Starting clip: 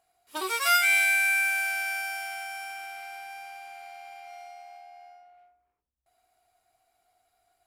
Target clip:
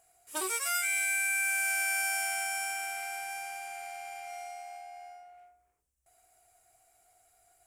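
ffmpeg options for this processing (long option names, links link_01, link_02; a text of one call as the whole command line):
ffmpeg -i in.wav -af "equalizer=frequency=250:width_type=o:width=1:gain=-6,equalizer=frequency=1000:width_type=o:width=1:gain=-6,equalizer=frequency=4000:width_type=o:width=1:gain=-9,equalizer=frequency=8000:width_type=o:width=1:gain=10,areverse,acompressor=threshold=-33dB:ratio=16,areverse,volume=6dB" out.wav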